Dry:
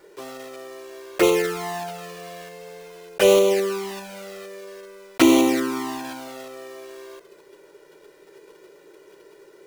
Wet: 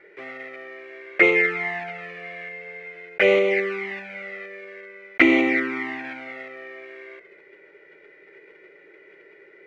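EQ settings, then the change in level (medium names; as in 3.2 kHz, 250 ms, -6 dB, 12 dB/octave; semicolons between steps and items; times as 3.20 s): resonant low-pass 2.1 kHz, resonance Q 10; bass shelf 78 Hz -7.5 dB; peaking EQ 1 kHz -12.5 dB 0.26 oct; -3.0 dB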